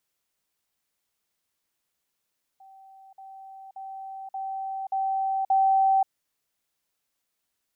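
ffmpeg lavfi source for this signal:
-f lavfi -i "aevalsrc='pow(10,(-47.5+6*floor(t/0.58))/20)*sin(2*PI*773*t)*clip(min(mod(t,0.58),0.53-mod(t,0.58))/0.005,0,1)':d=3.48:s=44100"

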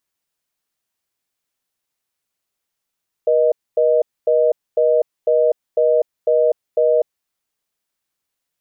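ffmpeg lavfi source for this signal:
-f lavfi -i "aevalsrc='0.188*(sin(2*PI*480*t)+sin(2*PI*620*t))*clip(min(mod(t,0.5),0.25-mod(t,0.5))/0.005,0,1)':d=3.77:s=44100"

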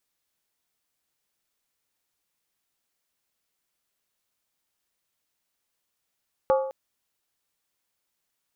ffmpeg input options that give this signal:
-f lavfi -i "aevalsrc='0.158*pow(10,-3*t/0.71)*sin(2*PI*532*t)+0.0794*pow(10,-3*t/0.562)*sin(2*PI*848*t)+0.0398*pow(10,-3*t/0.486)*sin(2*PI*1136.4*t)+0.02*pow(10,-3*t/0.469)*sin(2*PI*1221.5*t)+0.01*pow(10,-3*t/0.436)*sin(2*PI*1411.4*t)':d=0.21:s=44100"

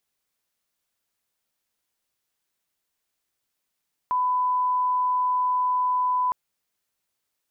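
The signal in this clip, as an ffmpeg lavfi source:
-f lavfi -i "sine=f=1000:d=2.21:r=44100,volume=-1.94dB"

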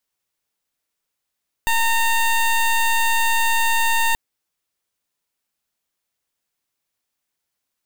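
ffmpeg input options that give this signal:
-f lavfi -i "aevalsrc='0.133*(2*lt(mod(915*t,1),0.17)-1)':d=2.48:s=44100"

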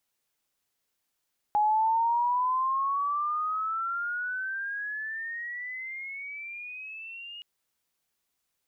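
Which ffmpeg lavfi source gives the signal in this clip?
-f lavfi -i "aevalsrc='pow(10,(-20.5-19*t/5.87)/20)*sin(2*PI*832*5.87/(21.5*log(2)/12)*(exp(21.5*log(2)/12*t/5.87)-1))':d=5.87:s=44100"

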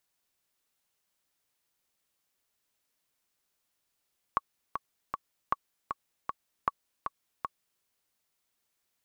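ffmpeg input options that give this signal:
-f lavfi -i "aevalsrc='pow(10,(-12.5-6.5*gte(mod(t,3*60/156),60/156))/20)*sin(2*PI*1120*mod(t,60/156))*exp(-6.91*mod(t,60/156)/0.03)':d=3.46:s=44100"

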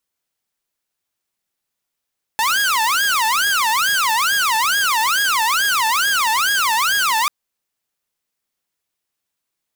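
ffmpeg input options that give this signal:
-f lavfi -i "aevalsrc='0.237*(2*mod((1262*t-388/(2*PI*2.3)*sin(2*PI*2.3*t)),1)-1)':d=4.89:s=44100"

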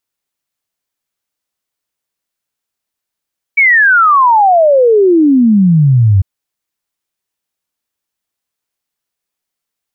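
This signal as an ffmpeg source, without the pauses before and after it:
-f lavfi -i "aevalsrc='0.596*clip(min(t,2.65-t)/0.01,0,1)*sin(2*PI*2300*2.65/log(92/2300)*(exp(log(92/2300)*t/2.65)-1))':d=2.65:s=44100"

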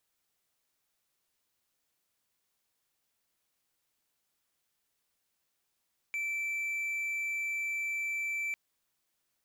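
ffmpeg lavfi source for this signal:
-f lavfi -i "aevalsrc='0.0335*(1-4*abs(mod(2330*t+0.25,1)-0.5))':d=2.4:s=44100"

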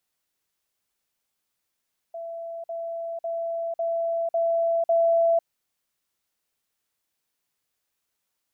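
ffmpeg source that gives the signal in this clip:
-f lavfi -i "aevalsrc='pow(10,(-32+3*floor(t/0.55))/20)*sin(2*PI*669*t)*clip(min(mod(t,0.55),0.5-mod(t,0.55))/0.005,0,1)':d=3.3:s=44100"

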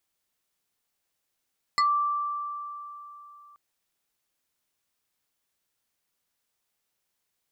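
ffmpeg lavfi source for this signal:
-f lavfi -i "aevalsrc='0.119*pow(10,-3*t/3.31)*sin(2*PI*1170*t+1.4*pow(10,-3*t/0.14)*sin(2*PI*2.71*1170*t))':d=1.78:s=44100"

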